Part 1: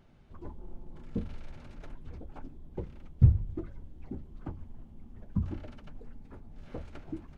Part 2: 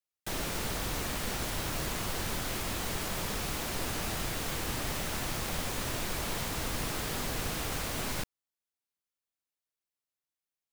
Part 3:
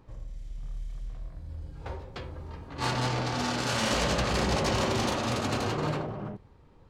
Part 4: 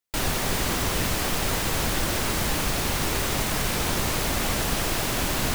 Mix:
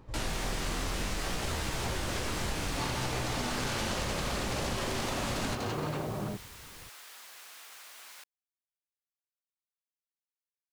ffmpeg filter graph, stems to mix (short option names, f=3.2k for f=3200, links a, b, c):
-filter_complex "[1:a]highpass=1.1k,volume=-12dB[a];[2:a]acompressor=threshold=-31dB:ratio=6,volume=2.5dB[b];[3:a]lowpass=9.1k,flanger=delay=15.5:depth=7.5:speed=0.63,volume=-2.5dB[c];[a][b][c]amix=inputs=3:normalize=0,acompressor=threshold=-29dB:ratio=6"